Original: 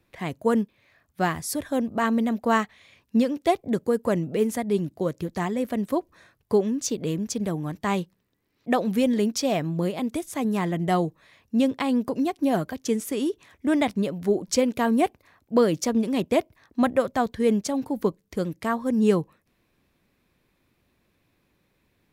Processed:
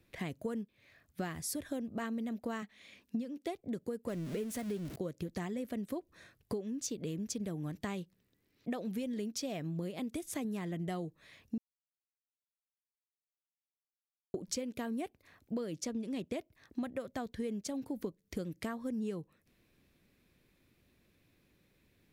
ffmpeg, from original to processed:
-filter_complex "[0:a]asettb=1/sr,asplit=3[a][b][c];[a]atrim=end=2.624[d];[b]atrim=start=2.62:end=3.53,asetpts=PTS-STARTPTS,afade=t=in:d=0.004:c=qsin,afade=t=out:st=0.906:d=0.004:c=qsin,lowshelf=f=170:t=q:w=3:g=-6[e];[c]atrim=start=3.526[f];[d][e]acrossfade=d=0.004:c1=hsin:c2=qsin[g];[g][f]acrossfade=d=0.004:c1=qsin:c2=hsin,asettb=1/sr,asplit=3[h][i][j];[h]atrim=end=4.084[k];[i]atrim=start=4.08:end=4.96,asetpts=PTS-STARTPTS,afade=t=in:d=0.004:c=qsin,afade=t=out:st=0.876:d=0.004:c=qsin,aeval=exprs='val(0)+0.5*0.0335*sgn(val(0))':c=same[l];[j]atrim=start=4.956[m];[k][l]acrossfade=d=0.004:c1=hsin:c2=qsin[n];[n][m]acrossfade=d=0.004:c1=qsin:c2=hsin,asettb=1/sr,asplit=3[o][p][q];[o]atrim=end=15.744[r];[p]atrim=start=15.74:end=16.37,asetpts=PTS-STARTPTS,afade=t=in:d=0.004:c=qsin,afade=t=out:st=0.626:d=0.004:c=qsin,lowpass=11k[s];[q]atrim=start=16.366[t];[r][s]acrossfade=d=0.004:c1=hsin:c2=qsin[u];[u][t]acrossfade=d=0.004:c1=qsin:c2=hsin,asplit=3[v][w][x];[v]atrim=end=11.58,asetpts=PTS-STARTPTS,afade=t=out:st=11.576:d=0.004:c=hsin[y];[w]atrim=start=11.58:end=14.34,asetpts=PTS-STARTPTS,volume=0[z];[x]atrim=start=14.34,asetpts=PTS-STARTPTS,afade=t=in:d=0.004:c=hsin[aa];[y][z][aa]concat=n=3:v=0:a=1,equalizer=f=960:t=o:w=1.1:g=-7,acompressor=threshold=-34dB:ratio=10,volume=-1dB"

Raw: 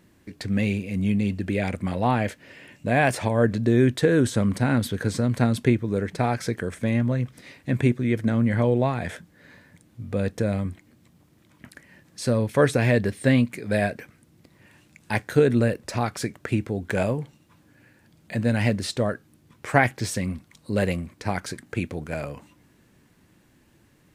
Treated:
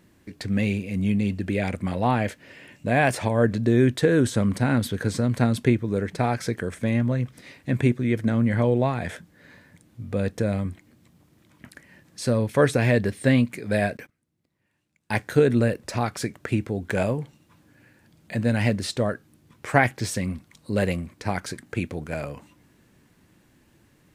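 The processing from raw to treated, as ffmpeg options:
-filter_complex "[0:a]asettb=1/sr,asplit=3[a][b][c];[a]atrim=end=13.974[d];[b]atrim=start=13.97:end=15.2,asetpts=PTS-STARTPTS,afade=t=in:d=0.004:c=qsin,afade=t=out:st=1.226:d=0.004:c=qsin,agate=range=-20dB:threshold=-47dB:ratio=16:release=100:detection=peak[e];[c]atrim=start=15.196[f];[d][e]acrossfade=d=0.004:c1=hsin:c2=qsin[g];[g][f]acrossfade=d=0.004:c1=qsin:c2=hsin"

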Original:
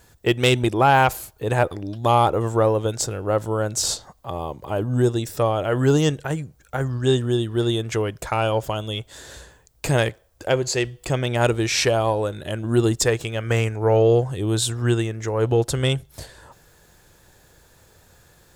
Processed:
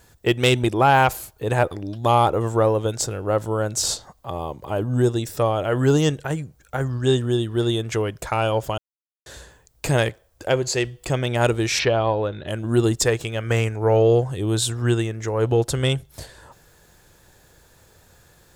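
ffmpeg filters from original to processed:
-filter_complex "[0:a]asplit=3[a][b][c];[a]afade=t=out:st=11.78:d=0.02[d];[b]lowpass=f=4.4k:w=0.5412,lowpass=f=4.4k:w=1.3066,afade=t=in:st=11.78:d=0.02,afade=t=out:st=12.47:d=0.02[e];[c]afade=t=in:st=12.47:d=0.02[f];[d][e][f]amix=inputs=3:normalize=0,asplit=3[g][h][i];[g]atrim=end=8.78,asetpts=PTS-STARTPTS,afade=t=out:st=8.776:d=0.004:c=hsin[j];[h]atrim=start=8.78:end=9.26,asetpts=PTS-STARTPTS,volume=0[k];[i]atrim=start=9.26,asetpts=PTS-STARTPTS,afade=t=in:d=0.004:c=hsin[l];[j][k][l]concat=n=3:v=0:a=1"

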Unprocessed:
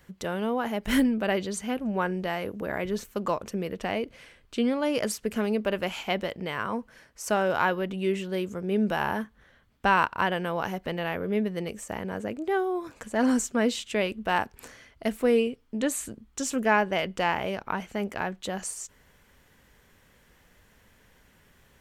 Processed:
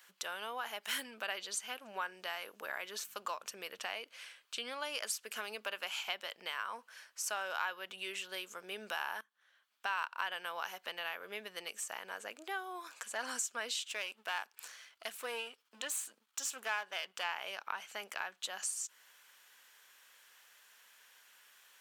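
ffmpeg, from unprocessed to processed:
-filter_complex "[0:a]asettb=1/sr,asplit=3[a][b][c];[a]atrim=end=2.994[d];[b]atrim=start=2.99:end=3.84,asetpts=PTS-STARTPTS,afade=t=in:d=0.004:c=qsin,afade=t=out:st=0.846:d=0.004:c=qsin,aeval=exprs='val(0)+0.00794*(sin(2*PI*50*n/s)+sin(2*PI*2*50*n/s)/2+sin(2*PI*3*50*n/s)/3+sin(2*PI*4*50*n/s)/4+sin(2*PI*5*50*n/s)/5)':c=same[e];[c]atrim=start=3.836[f];[d][e]acrossfade=d=0.004:c1=hsin:c2=qsin[g];[g][f]acrossfade=d=0.004:c1=qsin:c2=hsin,asplit=3[h][i][j];[h]afade=t=out:st=13.88:d=0.02[k];[i]aeval=exprs='if(lt(val(0),0),0.447*val(0),val(0))':c=same,afade=t=in:st=13.88:d=0.02,afade=t=out:st=17.23:d=0.02[l];[j]afade=t=in:st=17.23:d=0.02[m];[k][l][m]amix=inputs=3:normalize=0,asplit=2[n][o];[n]atrim=end=9.21,asetpts=PTS-STARTPTS,afade=t=out:st=9.206:d=0.004:c=hsin:silence=0.112202[p];[o]atrim=start=9.21,asetpts=PTS-STARTPTS,afade=t=in:d=1.08:silence=0.112202[q];[p][q]concat=n=2:v=0:a=1,highpass=1.4k,equalizer=f=2k:t=o:w=0.38:g=-6,acompressor=threshold=-43dB:ratio=2,volume=3.5dB"

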